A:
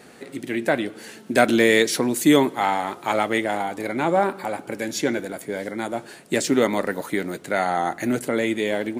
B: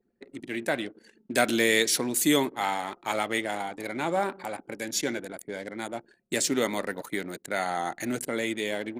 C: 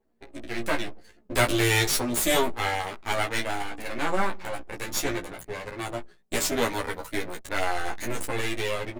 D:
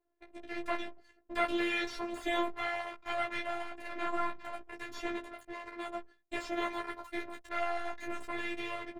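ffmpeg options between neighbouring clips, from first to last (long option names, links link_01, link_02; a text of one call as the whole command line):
ffmpeg -i in.wav -af "anlmdn=3.98,highshelf=frequency=2700:gain=10,volume=-8dB" out.wav
ffmpeg -i in.wav -filter_complex "[0:a]aeval=exprs='max(val(0),0)':channel_layout=same,asplit=2[link_01][link_02];[link_02]adelay=17,volume=-6dB[link_03];[link_01][link_03]amix=inputs=2:normalize=0,asplit=2[link_04][link_05];[link_05]adelay=10.5,afreqshift=-0.27[link_06];[link_04][link_06]amix=inputs=2:normalize=1,volume=7dB" out.wav
ffmpeg -i in.wav -filter_complex "[0:a]afftfilt=real='hypot(re,im)*cos(PI*b)':imag='0':win_size=512:overlap=0.75,asplit=2[link_01][link_02];[link_02]highpass=frequency=720:poles=1,volume=11dB,asoftclip=type=tanh:threshold=-6dB[link_03];[link_01][link_03]amix=inputs=2:normalize=0,lowpass=frequency=1700:poles=1,volume=-6dB,acrossover=split=4700[link_04][link_05];[link_05]acompressor=threshold=-47dB:ratio=4:attack=1:release=60[link_06];[link_04][link_06]amix=inputs=2:normalize=0,volume=-6.5dB" out.wav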